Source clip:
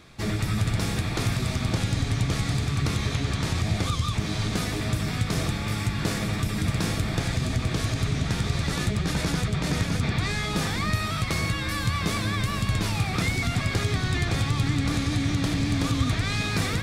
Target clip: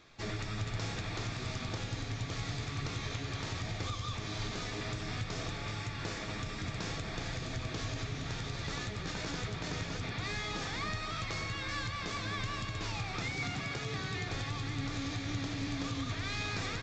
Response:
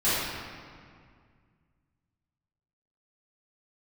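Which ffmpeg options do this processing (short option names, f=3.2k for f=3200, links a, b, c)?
-filter_complex "[0:a]alimiter=limit=-17dB:level=0:latency=1:release=304,asplit=2[a][b];[b]adelay=244.9,volume=-10dB,highshelf=f=4k:g=-5.51[c];[a][c]amix=inputs=2:normalize=0,asettb=1/sr,asplit=3[d][e][f];[d]atrim=end=13.284[g];[e]atrim=start=13.28:end=14.28,asetpts=PTS-STARTPTS,afade=t=in:d=0.004:c=qsin,afade=t=out:st=0.996:d=0.004:c=qsin,afreqshift=26[h];[f]atrim=start=14.276[i];[g][h]acrossfade=d=0.004:c1=hsin:c2=qsin[j];[j][i]acrossfade=d=0.004:c1=qsin:c2=hsin,equalizer=f=64:t=o:w=0.56:g=-12,aresample=16000,aresample=44100,equalizer=f=180:t=o:w=1.1:g=-7.5,asplit=2[k][l];[1:a]atrim=start_sample=2205[m];[l][m]afir=irnorm=-1:irlink=0,volume=-25.5dB[n];[k][n]amix=inputs=2:normalize=0,volume=-7.5dB"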